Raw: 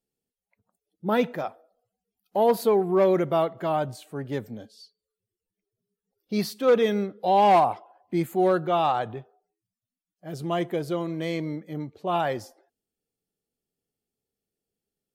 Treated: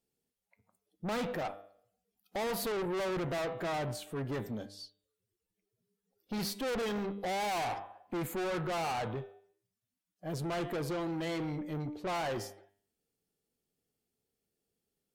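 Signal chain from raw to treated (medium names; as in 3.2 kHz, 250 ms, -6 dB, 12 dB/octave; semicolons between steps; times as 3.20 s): one-sided clip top -23.5 dBFS; de-hum 99.57 Hz, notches 39; valve stage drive 35 dB, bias 0.3; trim +2.5 dB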